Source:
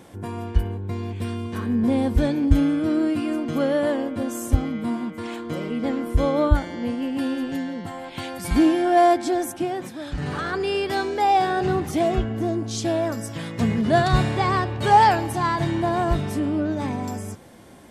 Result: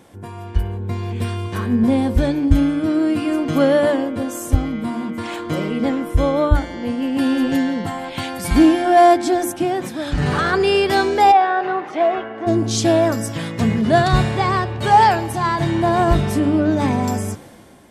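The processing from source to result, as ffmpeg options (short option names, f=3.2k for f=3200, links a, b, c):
-filter_complex "[0:a]asettb=1/sr,asplit=3[a][b][c];[a]atrim=end=5.904[d];[b]atrim=start=5.9:end=6.55,asetpts=PTS-STARTPTS,afade=t=in:d=0.004:c=qsin,afade=t=out:st=0.646:d=0.004:c=qsin,bandreject=f=4.5k:w=11[e];[c]atrim=start=6.546[f];[d][e]acrossfade=d=0.004:c1=hsin:c2=qsin[g];[g][f]acrossfade=d=0.004:c1=qsin:c2=hsin,asplit=3[h][i][j];[h]afade=t=out:st=11.31:d=0.02[k];[i]highpass=620,lowpass=2k,afade=t=in:st=11.31:d=0.02,afade=t=out:st=12.46:d=0.02[l];[j]afade=t=in:st=12.46:d=0.02[m];[k][l][m]amix=inputs=3:normalize=0,bandreject=f=58.69:t=h:w=4,bandreject=f=117.38:t=h:w=4,bandreject=f=176.07:t=h:w=4,bandreject=f=234.76:t=h:w=4,bandreject=f=293.45:t=h:w=4,bandreject=f=352.14:t=h:w=4,bandreject=f=410.83:t=h:w=4,bandreject=f=469.52:t=h:w=4,bandreject=f=528.21:t=h:w=4,dynaudnorm=f=120:g=11:m=11.5dB,volume=-1dB"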